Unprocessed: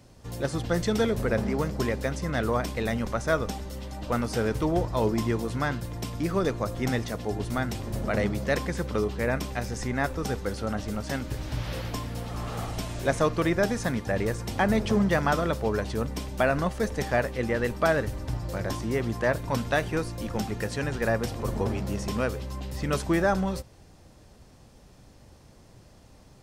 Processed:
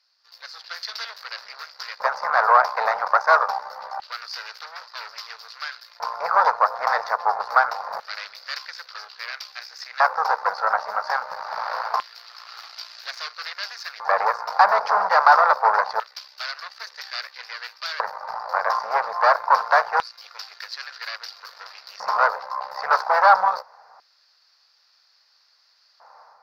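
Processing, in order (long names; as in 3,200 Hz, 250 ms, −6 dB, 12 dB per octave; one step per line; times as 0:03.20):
harmonic generator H 5 −18 dB, 8 −11 dB, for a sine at −10 dBFS
automatic gain control gain up to 7 dB
drawn EQ curve 190 Hz 0 dB, 320 Hz −24 dB, 450 Hz +7 dB, 1,400 Hz +14 dB, 3,200 Hz −12 dB, 4,700 Hz +10 dB, 8,500 Hz −27 dB, 13,000 Hz −8 dB
auto-filter high-pass square 0.25 Hz 880–3,100 Hz
level −12.5 dB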